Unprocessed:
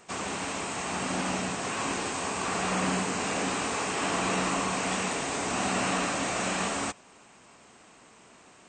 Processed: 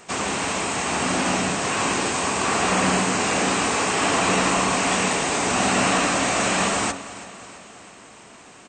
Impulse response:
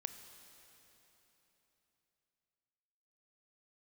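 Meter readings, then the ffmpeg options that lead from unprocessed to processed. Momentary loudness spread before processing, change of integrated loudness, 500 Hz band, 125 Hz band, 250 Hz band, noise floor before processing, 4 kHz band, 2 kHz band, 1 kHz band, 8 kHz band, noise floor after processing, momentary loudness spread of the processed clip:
5 LU, +8.5 dB, +8.0 dB, +7.0 dB, +7.5 dB, -55 dBFS, +9.0 dB, +8.5 dB, +8.0 dB, +9.0 dB, -46 dBFS, 6 LU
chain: -af "bandreject=f=45.9:t=h:w=4,bandreject=f=91.8:t=h:w=4,bandreject=f=137.7:t=h:w=4,bandreject=f=183.6:t=h:w=4,bandreject=f=229.5:t=h:w=4,bandreject=f=275.4:t=h:w=4,bandreject=f=321.3:t=h:w=4,bandreject=f=367.2:t=h:w=4,bandreject=f=413.1:t=h:w=4,bandreject=f=459:t=h:w=4,bandreject=f=504.9:t=h:w=4,bandreject=f=550.8:t=h:w=4,bandreject=f=596.7:t=h:w=4,bandreject=f=642.6:t=h:w=4,bandreject=f=688.5:t=h:w=4,bandreject=f=734.4:t=h:w=4,bandreject=f=780.3:t=h:w=4,bandreject=f=826.2:t=h:w=4,bandreject=f=872.1:t=h:w=4,bandreject=f=918:t=h:w=4,bandreject=f=963.9:t=h:w=4,bandreject=f=1.0098k:t=h:w=4,bandreject=f=1.0557k:t=h:w=4,bandreject=f=1.1016k:t=h:w=4,bandreject=f=1.1475k:t=h:w=4,bandreject=f=1.1934k:t=h:w=4,bandreject=f=1.2393k:t=h:w=4,bandreject=f=1.2852k:t=h:w=4,bandreject=f=1.3311k:t=h:w=4,bandreject=f=1.377k:t=h:w=4,bandreject=f=1.4229k:t=h:w=4,bandreject=f=1.4688k:t=h:w=4,bandreject=f=1.5147k:t=h:w=4,bandreject=f=1.5606k:t=h:w=4,bandreject=f=1.6065k:t=h:w=4,acontrast=87,aecho=1:1:330|660|990|1320|1650:0.15|0.0853|0.0486|0.0277|0.0158,volume=1.5dB"

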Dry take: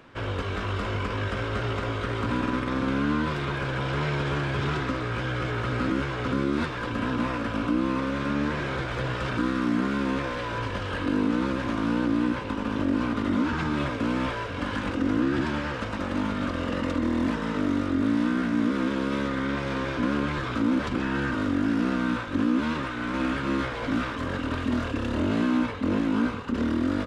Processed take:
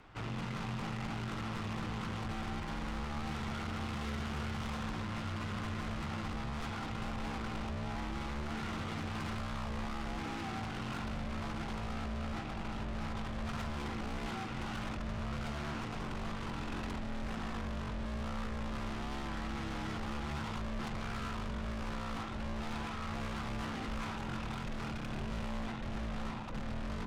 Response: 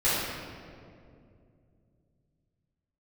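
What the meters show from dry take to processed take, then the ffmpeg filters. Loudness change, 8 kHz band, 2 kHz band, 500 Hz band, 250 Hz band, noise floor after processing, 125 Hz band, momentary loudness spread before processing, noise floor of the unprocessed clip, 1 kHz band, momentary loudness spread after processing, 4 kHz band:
-12.5 dB, n/a, -12.5 dB, -14.5 dB, -15.5 dB, -40 dBFS, -9.0 dB, 5 LU, -32 dBFS, -10.0 dB, 2 LU, -8.5 dB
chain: -af "aeval=exprs='(tanh(63.1*val(0)+0.7)-tanh(0.7))/63.1':c=same,afreqshift=-220,volume=-1.5dB"

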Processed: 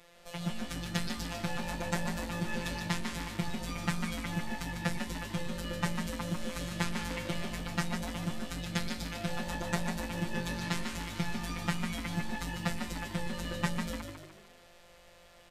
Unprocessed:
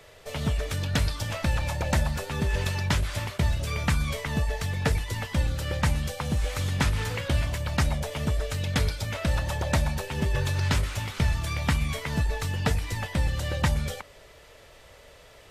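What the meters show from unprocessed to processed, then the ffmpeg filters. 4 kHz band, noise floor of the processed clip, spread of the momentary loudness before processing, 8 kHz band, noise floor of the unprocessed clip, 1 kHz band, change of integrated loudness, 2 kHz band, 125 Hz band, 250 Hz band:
-5.5 dB, -57 dBFS, 3 LU, -6.0 dB, -52 dBFS, -5.0 dB, -8.0 dB, -5.5 dB, -11.5 dB, -2.0 dB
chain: -filter_complex "[0:a]afftfilt=real='hypot(re,im)*cos(PI*b)':imag='0':win_size=1024:overlap=0.75,asplit=6[a][b][c][d][e][f];[b]adelay=148,afreqshift=50,volume=-6dB[g];[c]adelay=296,afreqshift=100,volume=-13.1dB[h];[d]adelay=444,afreqshift=150,volume=-20.3dB[i];[e]adelay=592,afreqshift=200,volume=-27.4dB[j];[f]adelay=740,afreqshift=250,volume=-34.5dB[k];[a][g][h][i][j][k]amix=inputs=6:normalize=0,volume=-3.5dB"

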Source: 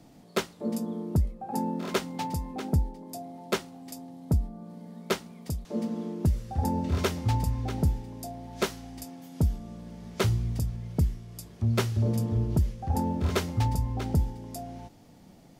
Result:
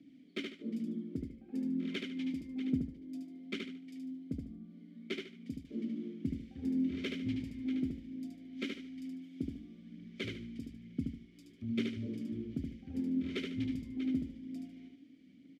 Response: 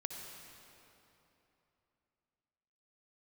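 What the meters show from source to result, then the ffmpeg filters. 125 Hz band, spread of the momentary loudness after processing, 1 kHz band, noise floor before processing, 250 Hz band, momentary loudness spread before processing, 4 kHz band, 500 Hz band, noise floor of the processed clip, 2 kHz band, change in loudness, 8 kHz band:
-18.5 dB, 13 LU, under -25 dB, -53 dBFS, -3.0 dB, 15 LU, -8.0 dB, -13.5 dB, -59 dBFS, -7.5 dB, -9.5 dB, under -20 dB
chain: -filter_complex "[0:a]asplit=3[a][b][c];[a]bandpass=f=270:t=q:w=8,volume=0dB[d];[b]bandpass=f=2.29k:t=q:w=8,volume=-6dB[e];[c]bandpass=f=3.01k:t=q:w=8,volume=-9dB[f];[d][e][f]amix=inputs=3:normalize=0,aphaser=in_gain=1:out_gain=1:delay=3.8:decay=0.35:speed=1.1:type=triangular,aecho=1:1:74|148|222|296:0.631|0.189|0.0568|0.017,volume=2.5dB"

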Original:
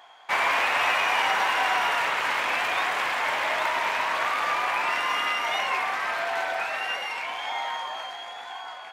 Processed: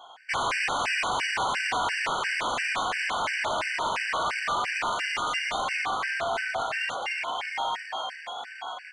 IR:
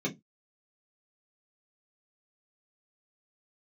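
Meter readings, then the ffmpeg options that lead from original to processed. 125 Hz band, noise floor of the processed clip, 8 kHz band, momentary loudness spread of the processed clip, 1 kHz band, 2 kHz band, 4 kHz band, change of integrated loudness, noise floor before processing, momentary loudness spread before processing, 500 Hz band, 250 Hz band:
n/a, -44 dBFS, +2.0 dB, 6 LU, -3.0 dB, -3.0 dB, -1.5 dB, -3.0 dB, -40 dBFS, 10 LU, -2.0 dB, +1.5 dB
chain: -af "asoftclip=type=hard:threshold=-26dB,aresample=22050,aresample=44100,afftfilt=real='re*gt(sin(2*PI*2.9*pts/sr)*(1-2*mod(floor(b*sr/1024/1500),2)),0)':imag='im*gt(sin(2*PI*2.9*pts/sr)*(1-2*mod(floor(b*sr/1024/1500),2)),0)':win_size=1024:overlap=0.75,volume=3.5dB"

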